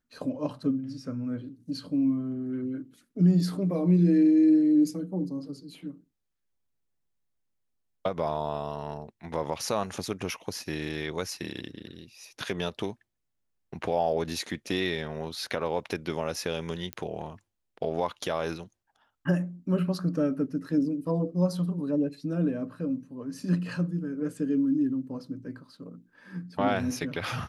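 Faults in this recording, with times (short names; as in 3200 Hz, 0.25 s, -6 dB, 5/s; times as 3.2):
16.93 pop -18 dBFS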